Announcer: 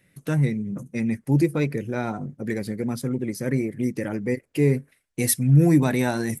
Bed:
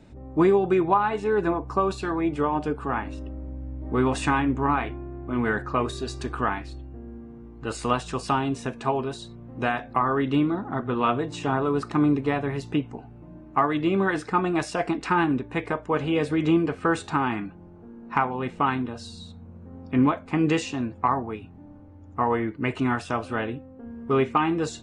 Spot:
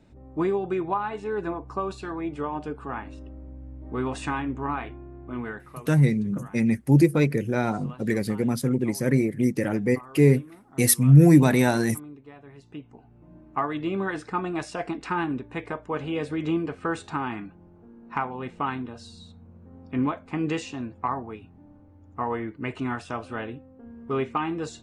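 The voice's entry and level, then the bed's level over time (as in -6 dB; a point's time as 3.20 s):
5.60 s, +2.5 dB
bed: 5.35 s -6 dB
5.91 s -22 dB
12.34 s -22 dB
13.34 s -5 dB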